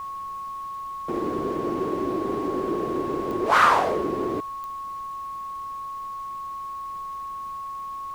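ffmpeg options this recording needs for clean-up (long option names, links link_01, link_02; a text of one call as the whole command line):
ffmpeg -i in.wav -af "adeclick=threshold=4,bandreject=frequency=1100:width=30,agate=range=-21dB:threshold=-26dB" out.wav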